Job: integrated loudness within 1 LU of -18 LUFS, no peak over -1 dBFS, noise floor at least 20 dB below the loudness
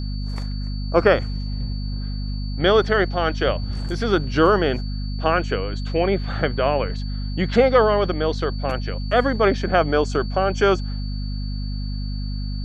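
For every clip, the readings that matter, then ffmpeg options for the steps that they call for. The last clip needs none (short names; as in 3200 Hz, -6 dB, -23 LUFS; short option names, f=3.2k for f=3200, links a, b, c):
hum 50 Hz; harmonics up to 250 Hz; hum level -24 dBFS; steady tone 4500 Hz; tone level -40 dBFS; loudness -22.0 LUFS; peak -3.0 dBFS; loudness target -18.0 LUFS
-> -af "bandreject=f=50:t=h:w=4,bandreject=f=100:t=h:w=4,bandreject=f=150:t=h:w=4,bandreject=f=200:t=h:w=4,bandreject=f=250:t=h:w=4"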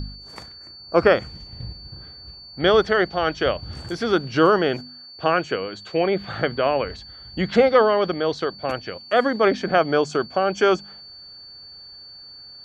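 hum none; steady tone 4500 Hz; tone level -40 dBFS
-> -af "bandreject=f=4.5k:w=30"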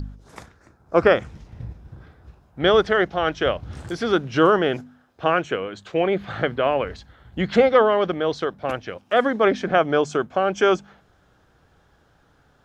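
steady tone none; loudness -21.5 LUFS; peak -3.5 dBFS; loudness target -18.0 LUFS
-> -af "volume=3.5dB,alimiter=limit=-1dB:level=0:latency=1"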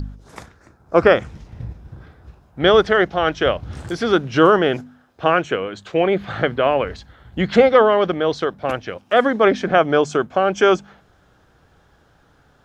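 loudness -18.0 LUFS; peak -1.0 dBFS; noise floor -56 dBFS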